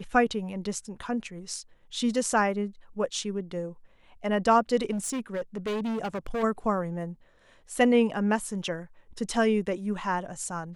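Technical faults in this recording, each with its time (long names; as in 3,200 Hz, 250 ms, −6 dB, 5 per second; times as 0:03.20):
0:04.91–0:06.44: clipping −27 dBFS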